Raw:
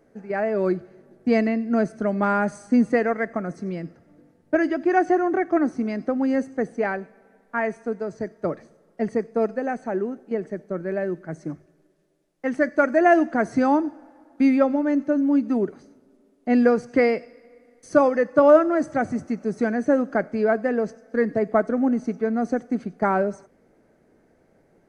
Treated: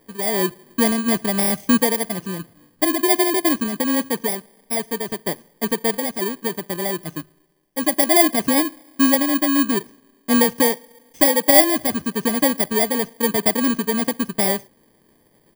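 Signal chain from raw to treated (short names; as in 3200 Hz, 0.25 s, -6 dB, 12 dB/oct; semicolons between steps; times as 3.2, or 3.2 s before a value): FFT order left unsorted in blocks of 32 samples; tempo 1.6×; gain +2.5 dB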